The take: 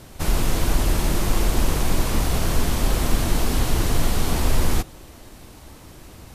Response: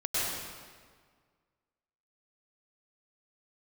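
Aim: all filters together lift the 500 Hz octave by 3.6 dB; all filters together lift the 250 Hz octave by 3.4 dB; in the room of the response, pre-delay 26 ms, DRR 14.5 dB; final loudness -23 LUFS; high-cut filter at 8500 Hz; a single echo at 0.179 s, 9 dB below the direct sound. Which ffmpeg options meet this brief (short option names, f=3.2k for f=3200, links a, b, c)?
-filter_complex "[0:a]lowpass=8.5k,equalizer=f=250:t=o:g=3.5,equalizer=f=500:t=o:g=3.5,aecho=1:1:179:0.355,asplit=2[a][b];[1:a]atrim=start_sample=2205,adelay=26[c];[b][c]afir=irnorm=-1:irlink=0,volume=-23.5dB[d];[a][d]amix=inputs=2:normalize=0,volume=-1dB"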